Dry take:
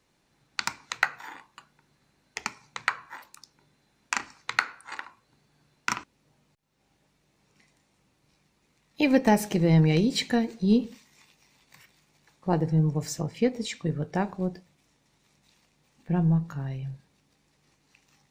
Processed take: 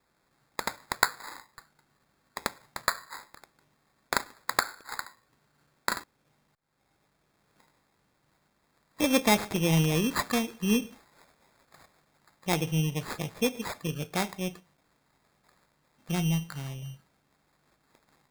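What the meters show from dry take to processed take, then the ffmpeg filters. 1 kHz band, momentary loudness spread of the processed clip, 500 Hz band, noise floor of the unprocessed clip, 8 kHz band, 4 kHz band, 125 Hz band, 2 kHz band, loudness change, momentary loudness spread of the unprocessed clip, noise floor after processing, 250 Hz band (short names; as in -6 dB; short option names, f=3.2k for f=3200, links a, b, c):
0.0 dB, 16 LU, -3.0 dB, -70 dBFS, +3.5 dB, +1.5 dB, -5.0 dB, -1.5 dB, -3.0 dB, 18 LU, -72 dBFS, -4.5 dB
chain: -af "acrusher=samples=15:mix=1:aa=0.000001,tiltshelf=f=860:g=-3.5,volume=-1.5dB"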